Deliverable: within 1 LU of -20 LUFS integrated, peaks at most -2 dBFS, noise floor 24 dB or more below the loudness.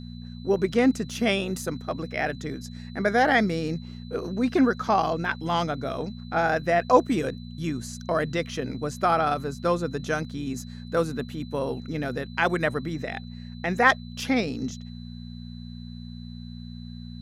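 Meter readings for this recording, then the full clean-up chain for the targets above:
hum 60 Hz; harmonics up to 240 Hz; hum level -37 dBFS; steady tone 4000 Hz; tone level -51 dBFS; loudness -26.0 LUFS; peak -4.5 dBFS; loudness target -20.0 LUFS
-> de-hum 60 Hz, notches 4; notch 4000 Hz, Q 30; gain +6 dB; limiter -2 dBFS

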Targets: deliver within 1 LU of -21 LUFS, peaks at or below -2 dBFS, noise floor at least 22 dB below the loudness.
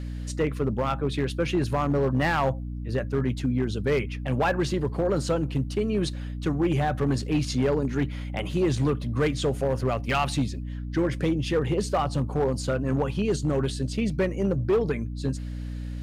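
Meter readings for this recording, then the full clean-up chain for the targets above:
clipped 1.6%; flat tops at -17.5 dBFS; hum 60 Hz; harmonics up to 300 Hz; hum level -31 dBFS; loudness -26.5 LUFS; peak -17.5 dBFS; loudness target -21.0 LUFS
-> clip repair -17.5 dBFS; notches 60/120/180/240/300 Hz; gain +5.5 dB

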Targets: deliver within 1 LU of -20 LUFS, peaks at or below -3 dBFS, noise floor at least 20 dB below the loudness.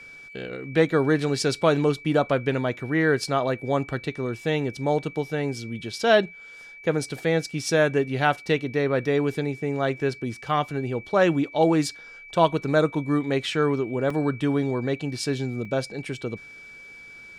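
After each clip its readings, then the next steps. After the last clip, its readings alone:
dropouts 2; longest dropout 3.3 ms; steady tone 2300 Hz; tone level -42 dBFS; loudness -24.5 LUFS; peak -5.0 dBFS; loudness target -20.0 LUFS
-> interpolate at 14.1/15.65, 3.3 ms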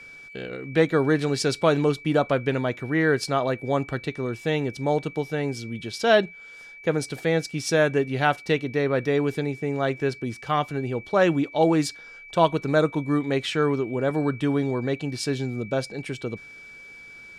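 dropouts 0; steady tone 2300 Hz; tone level -42 dBFS
-> notch 2300 Hz, Q 30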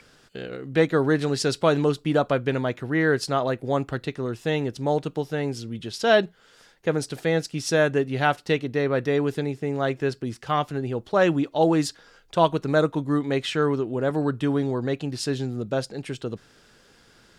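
steady tone none; loudness -24.5 LUFS; peak -5.5 dBFS; loudness target -20.0 LUFS
-> gain +4.5 dB; limiter -3 dBFS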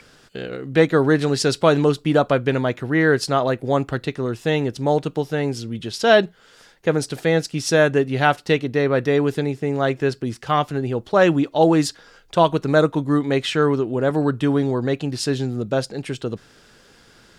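loudness -20.0 LUFS; peak -3.0 dBFS; noise floor -52 dBFS

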